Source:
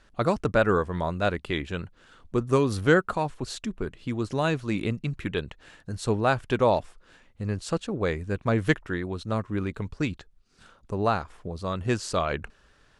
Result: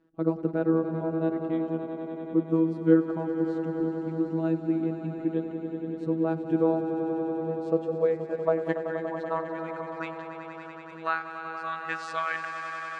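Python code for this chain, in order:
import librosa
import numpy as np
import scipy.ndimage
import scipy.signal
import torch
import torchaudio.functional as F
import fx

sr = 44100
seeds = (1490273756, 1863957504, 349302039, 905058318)

y = fx.robotise(x, sr, hz=162.0)
y = fx.filter_sweep_bandpass(y, sr, from_hz=300.0, to_hz=1700.0, start_s=6.99, end_s=10.61, q=2.5)
y = fx.echo_swell(y, sr, ms=95, loudest=5, wet_db=-11.0)
y = F.gain(torch.from_numpy(y), 7.5).numpy()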